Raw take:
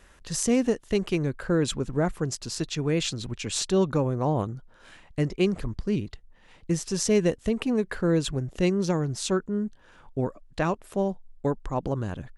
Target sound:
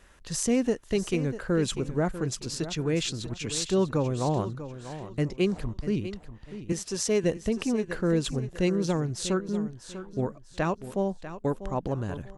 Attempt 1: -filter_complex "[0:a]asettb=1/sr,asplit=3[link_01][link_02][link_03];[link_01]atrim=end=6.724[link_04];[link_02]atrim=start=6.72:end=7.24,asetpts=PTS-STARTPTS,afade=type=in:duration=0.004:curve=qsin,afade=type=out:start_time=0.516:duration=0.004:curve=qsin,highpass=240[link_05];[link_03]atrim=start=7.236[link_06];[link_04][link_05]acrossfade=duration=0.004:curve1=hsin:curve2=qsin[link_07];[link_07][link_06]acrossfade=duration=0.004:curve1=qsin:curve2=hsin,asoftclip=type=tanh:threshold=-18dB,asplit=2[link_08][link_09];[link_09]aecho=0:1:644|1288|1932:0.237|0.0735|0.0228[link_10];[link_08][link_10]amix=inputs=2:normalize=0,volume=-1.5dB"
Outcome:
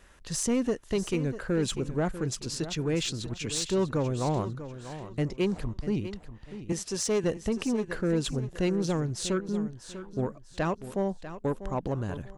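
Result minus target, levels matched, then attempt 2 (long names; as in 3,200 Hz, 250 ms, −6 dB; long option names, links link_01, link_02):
soft clipping: distortion +17 dB
-filter_complex "[0:a]asettb=1/sr,asplit=3[link_01][link_02][link_03];[link_01]atrim=end=6.724[link_04];[link_02]atrim=start=6.72:end=7.24,asetpts=PTS-STARTPTS,afade=type=in:duration=0.004:curve=qsin,afade=type=out:start_time=0.516:duration=0.004:curve=qsin,highpass=240[link_05];[link_03]atrim=start=7.236[link_06];[link_04][link_05]acrossfade=duration=0.004:curve1=hsin:curve2=qsin[link_07];[link_07][link_06]acrossfade=duration=0.004:curve1=qsin:curve2=hsin,asoftclip=type=tanh:threshold=-7.5dB,asplit=2[link_08][link_09];[link_09]aecho=0:1:644|1288|1932:0.237|0.0735|0.0228[link_10];[link_08][link_10]amix=inputs=2:normalize=0,volume=-1.5dB"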